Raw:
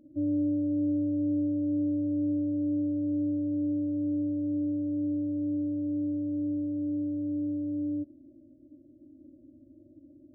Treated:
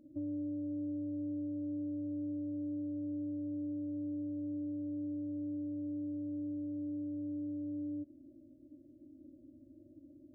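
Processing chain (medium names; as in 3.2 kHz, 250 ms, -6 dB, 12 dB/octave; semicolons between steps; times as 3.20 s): compression 3:1, threshold -36 dBFS, peak gain reduction 8 dB; trim -3 dB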